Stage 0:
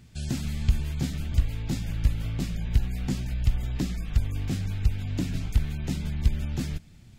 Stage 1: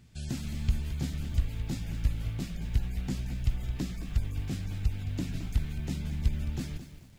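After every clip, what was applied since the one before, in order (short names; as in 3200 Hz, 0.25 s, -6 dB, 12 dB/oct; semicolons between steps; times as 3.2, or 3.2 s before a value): lo-fi delay 0.217 s, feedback 35%, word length 8-bit, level -11 dB; gain -5 dB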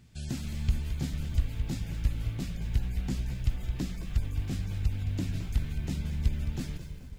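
darkening echo 0.215 s, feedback 77%, low-pass 3300 Hz, level -14.5 dB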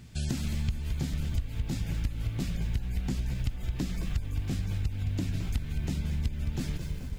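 compressor 6:1, threshold -35 dBFS, peak gain reduction 15 dB; gain +8 dB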